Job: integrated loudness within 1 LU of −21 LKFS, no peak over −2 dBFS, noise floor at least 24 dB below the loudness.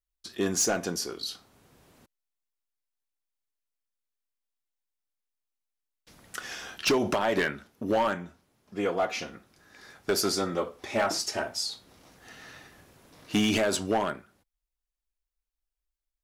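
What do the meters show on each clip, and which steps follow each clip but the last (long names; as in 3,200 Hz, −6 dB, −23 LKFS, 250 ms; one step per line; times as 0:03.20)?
share of clipped samples 0.5%; peaks flattened at −19.0 dBFS; integrated loudness −29.0 LKFS; sample peak −19.0 dBFS; target loudness −21.0 LKFS
→ clipped peaks rebuilt −19 dBFS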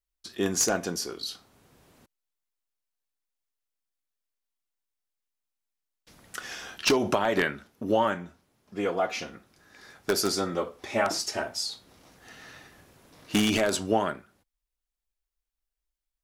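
share of clipped samples 0.0%; integrated loudness −28.0 LKFS; sample peak −10.0 dBFS; target loudness −21.0 LKFS
→ level +7 dB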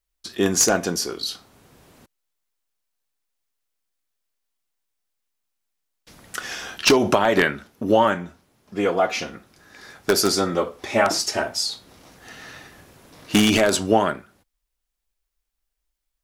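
integrated loudness −21.0 LKFS; sample peak −3.0 dBFS; background noise floor −80 dBFS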